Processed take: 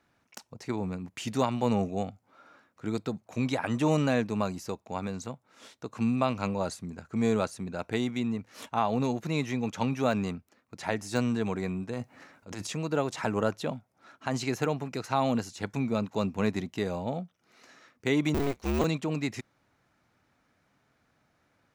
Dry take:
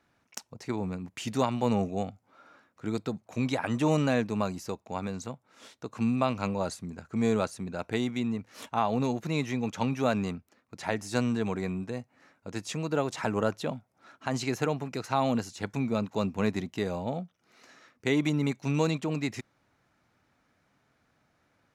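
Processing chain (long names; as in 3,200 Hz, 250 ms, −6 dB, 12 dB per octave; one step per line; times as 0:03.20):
0:18.34–0:18.84: sub-harmonics by changed cycles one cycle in 2, inverted
de-essing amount 70%
0:11.93–0:12.67: transient designer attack −9 dB, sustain +10 dB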